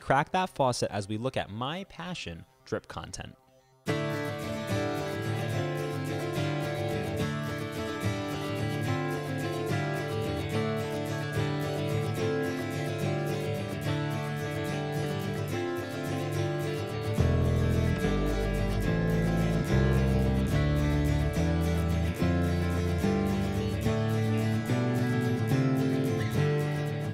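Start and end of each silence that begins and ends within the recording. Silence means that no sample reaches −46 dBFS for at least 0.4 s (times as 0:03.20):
0:03.34–0:03.86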